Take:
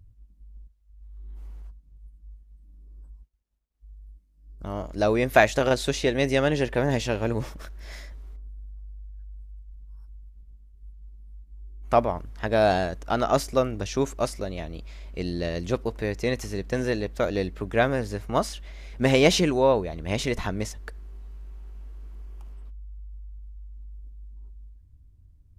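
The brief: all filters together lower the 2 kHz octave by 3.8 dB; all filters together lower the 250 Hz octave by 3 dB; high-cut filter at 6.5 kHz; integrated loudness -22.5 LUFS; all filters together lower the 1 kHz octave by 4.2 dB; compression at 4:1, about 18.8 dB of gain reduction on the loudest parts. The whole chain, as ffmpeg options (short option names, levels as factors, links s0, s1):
-af "lowpass=6500,equalizer=f=250:t=o:g=-3.5,equalizer=f=1000:t=o:g=-5.5,equalizer=f=2000:t=o:g=-3,acompressor=threshold=0.0112:ratio=4,volume=11.2"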